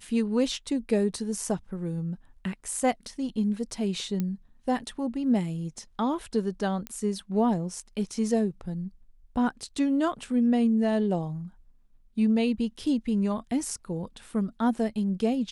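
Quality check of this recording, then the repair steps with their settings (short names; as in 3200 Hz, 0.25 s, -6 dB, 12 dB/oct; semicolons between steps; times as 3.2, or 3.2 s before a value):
4.2 pop -17 dBFS
6.87 pop -18 dBFS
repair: de-click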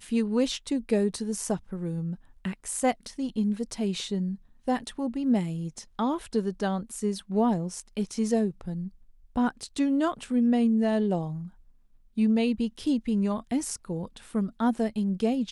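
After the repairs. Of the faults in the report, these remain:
none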